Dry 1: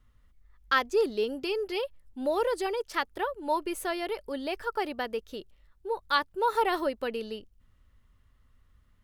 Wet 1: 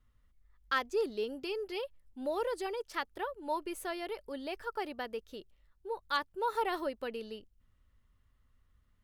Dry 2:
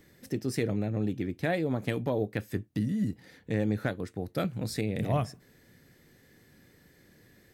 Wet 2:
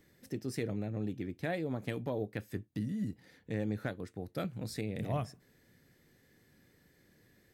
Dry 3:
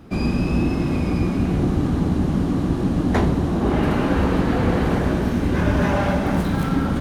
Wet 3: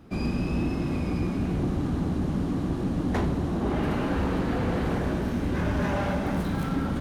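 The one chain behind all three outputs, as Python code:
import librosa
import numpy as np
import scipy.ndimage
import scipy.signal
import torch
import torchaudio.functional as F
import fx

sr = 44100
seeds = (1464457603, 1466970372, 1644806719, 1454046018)

y = np.clip(x, -10.0 ** (-14.0 / 20.0), 10.0 ** (-14.0 / 20.0))
y = F.gain(torch.from_numpy(y), -6.5).numpy()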